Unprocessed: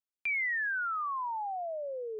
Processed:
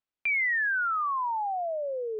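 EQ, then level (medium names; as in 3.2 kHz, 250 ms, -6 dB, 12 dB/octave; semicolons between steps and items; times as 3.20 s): low-pass 3.4 kHz; +5.5 dB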